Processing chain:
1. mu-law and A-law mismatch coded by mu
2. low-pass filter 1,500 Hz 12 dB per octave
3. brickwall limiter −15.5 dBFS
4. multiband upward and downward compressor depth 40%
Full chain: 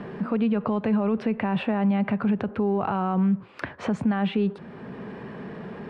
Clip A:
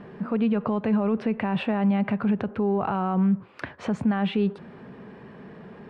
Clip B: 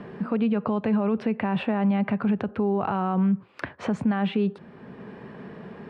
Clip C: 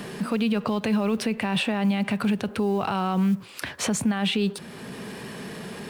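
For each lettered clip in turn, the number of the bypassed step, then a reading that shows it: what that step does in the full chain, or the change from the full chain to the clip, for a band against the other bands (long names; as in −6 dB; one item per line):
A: 4, change in crest factor −3.0 dB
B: 1, distortion level −28 dB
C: 2, change in momentary loudness spread −1 LU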